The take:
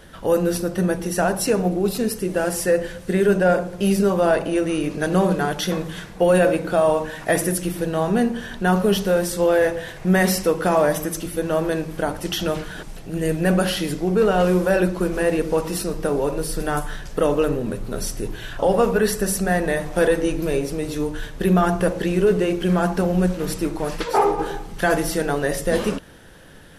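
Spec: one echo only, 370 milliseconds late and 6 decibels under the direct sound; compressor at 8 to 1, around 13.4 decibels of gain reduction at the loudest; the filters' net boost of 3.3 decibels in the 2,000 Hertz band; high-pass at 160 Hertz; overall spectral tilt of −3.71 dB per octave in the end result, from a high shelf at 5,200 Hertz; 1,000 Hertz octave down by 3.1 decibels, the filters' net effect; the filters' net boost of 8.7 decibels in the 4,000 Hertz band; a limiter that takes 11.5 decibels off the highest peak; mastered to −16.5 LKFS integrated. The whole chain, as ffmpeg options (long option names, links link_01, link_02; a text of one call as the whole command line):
ffmpeg -i in.wav -af "highpass=160,equalizer=frequency=1000:width_type=o:gain=-6.5,equalizer=frequency=2000:width_type=o:gain=4.5,equalizer=frequency=4000:width_type=o:gain=8.5,highshelf=frequency=5200:gain=4.5,acompressor=threshold=-28dB:ratio=8,alimiter=level_in=2dB:limit=-24dB:level=0:latency=1,volume=-2dB,aecho=1:1:370:0.501,volume=17.5dB" out.wav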